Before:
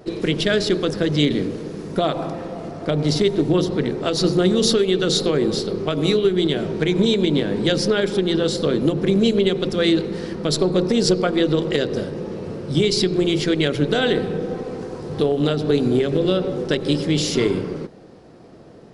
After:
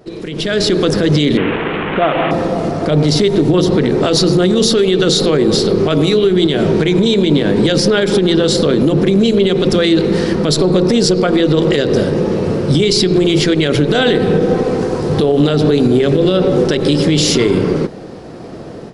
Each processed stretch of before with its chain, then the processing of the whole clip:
1.37–2.31 delta modulation 16 kbps, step -23.5 dBFS + low shelf 400 Hz -8 dB
whole clip: compressor 2:1, threshold -21 dBFS; limiter -17.5 dBFS; AGC gain up to 15 dB

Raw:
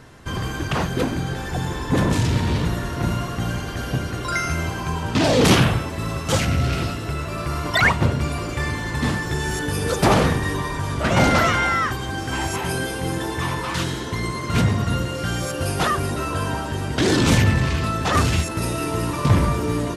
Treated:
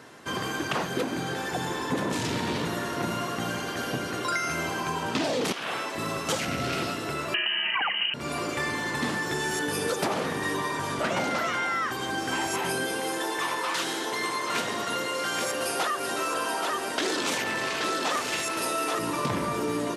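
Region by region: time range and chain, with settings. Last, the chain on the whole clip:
5.52–5.95 weighting filter A + compressor 4:1, threshold -23 dBFS
7.34–8.14 inverted band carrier 3000 Hz + fast leveller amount 50%
13–18.99 tone controls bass -15 dB, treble +1 dB + echo 0.827 s -7 dB
whole clip: HPF 250 Hz 12 dB/oct; compressor 12:1, threshold -24 dBFS

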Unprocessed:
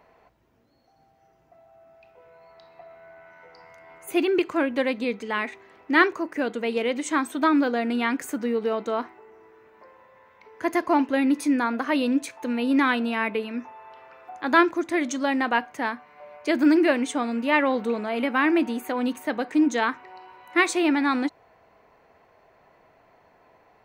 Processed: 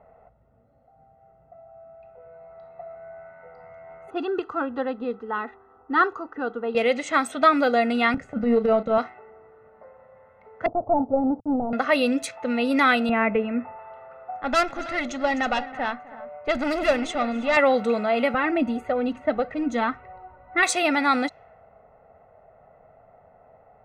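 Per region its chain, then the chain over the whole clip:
4.1–6.75 LPF 2400 Hz + fixed phaser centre 600 Hz, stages 6
8.14–8.98 RIAA curve playback + transient shaper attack -12 dB, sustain -8 dB + doubler 33 ms -11 dB
10.66–11.73 switching dead time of 0.29 ms + elliptic low-pass 870 Hz, stop band 70 dB + bell 110 Hz +8.5 dB 0.71 oct
13.09–13.79 LPF 2600 Hz 24 dB/oct + tilt -2 dB/oct
14.4–17.57 tube stage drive 19 dB, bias 0.35 + tapped delay 0.256/0.323 s -19/-15.5 dB
18.34–20.63 RIAA curve playback + flange 1.7 Hz, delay 1.5 ms, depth 2.2 ms, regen +26%
whole clip: low-pass opened by the level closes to 1000 Hz, open at -19.5 dBFS; comb 1.5 ms, depth 75%; gain +3 dB

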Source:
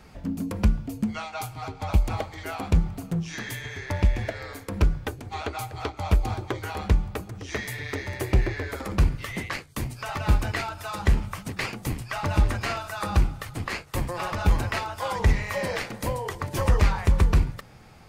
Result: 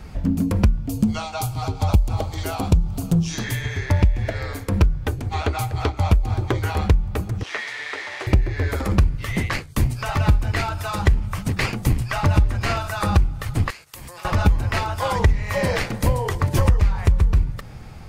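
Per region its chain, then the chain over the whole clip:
0.89–3.44 bell 1900 Hz -11.5 dB 0.97 oct + mismatched tape noise reduction encoder only
7.43–8.27 delta modulation 64 kbps, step -30.5 dBFS + BPF 770–3800 Hz + doubler 13 ms -13.5 dB
13.7–14.25 gate -46 dBFS, range -11 dB + tilt +3.5 dB/oct + compressor 20:1, threshold -41 dBFS
whole clip: low shelf 140 Hz +12 dB; compressor 12:1, threshold -18 dBFS; gain +5.5 dB

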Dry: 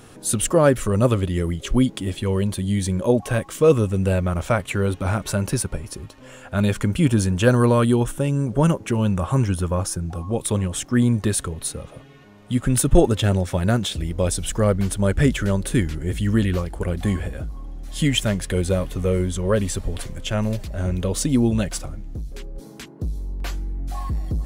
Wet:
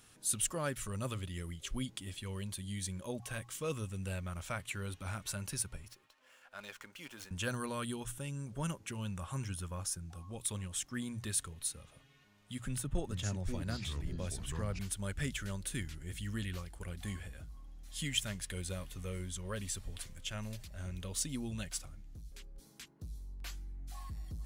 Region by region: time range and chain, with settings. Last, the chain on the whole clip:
5.88–7.31 HPF 540 Hz + high shelf 3000 Hz -9.5 dB + running maximum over 3 samples
12.67–14.79 high shelf 2100 Hz -9 dB + echoes that change speed 0.417 s, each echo -6 st, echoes 2, each echo -6 dB + three-band squash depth 40%
whole clip: passive tone stack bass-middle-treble 5-5-5; notches 60/120 Hz; gain -3.5 dB

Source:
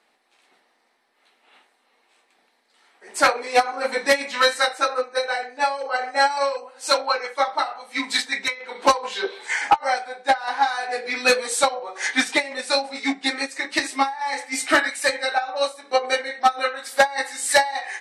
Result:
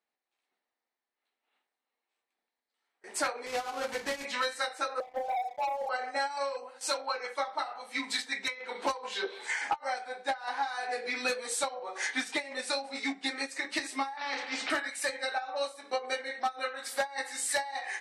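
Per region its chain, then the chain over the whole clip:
3.46–4.25 switching dead time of 0.13 ms + Bessel low-pass 9800 Hz, order 8 + compressor 2.5:1, threshold -19 dBFS
5–5.89 Butterworth band-pass 700 Hz, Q 3.5 + sample leveller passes 3
14.17–14.7 LPF 3700 Hz 24 dB/oct + spectral compressor 2:1
whole clip: gate with hold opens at -37 dBFS; compressor 3:1, threshold -28 dBFS; gain -3.5 dB

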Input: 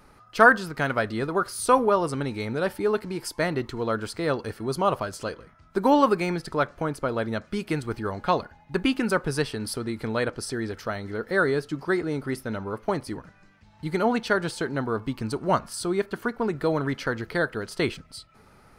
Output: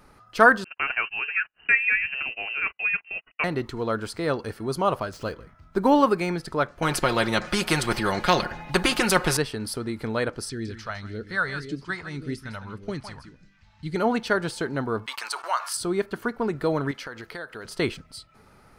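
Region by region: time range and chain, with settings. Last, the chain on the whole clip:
0.64–3.44 gate -34 dBFS, range -38 dB + inverted band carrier 2900 Hz + air absorption 150 m
5.13–6.05 median filter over 5 samples + low shelf 130 Hz +7 dB
6.82–9.37 high shelf 4300 Hz -6.5 dB + comb 5.6 ms + spectral compressor 2:1
10.49–13.96 LPF 7200 Hz + echo 0.158 s -10.5 dB + phaser stages 2, 1.8 Hz, lowest notch 310–1000 Hz
15.06–15.77 HPF 890 Hz 24 dB/oct + gate -53 dBFS, range -16 dB + fast leveller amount 50%
16.91–17.65 low shelf 390 Hz -11 dB + compressor 4:1, threshold -33 dBFS
whole clip: dry

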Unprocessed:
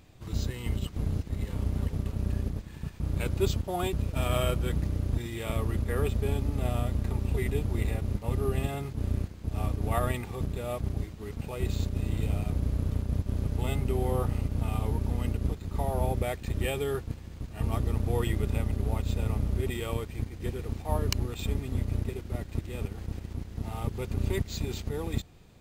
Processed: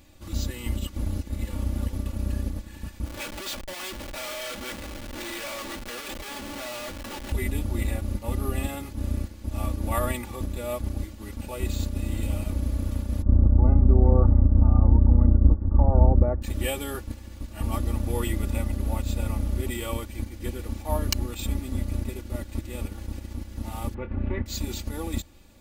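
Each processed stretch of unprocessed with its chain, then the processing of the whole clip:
3.06–7.32 HPF 600 Hz + Schmitt trigger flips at -44.5 dBFS + dynamic EQ 2900 Hz, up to +5 dB, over -54 dBFS, Q 0.71
13.22–16.42 inverse Chebyshev low-pass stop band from 3200 Hz, stop band 50 dB + low shelf 290 Hz +11.5 dB
23.94–24.46 LPF 2200 Hz 24 dB/oct + doubler 25 ms -10.5 dB + Doppler distortion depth 0.21 ms
whole clip: high shelf 5600 Hz +7 dB; comb 3.5 ms, depth 77%

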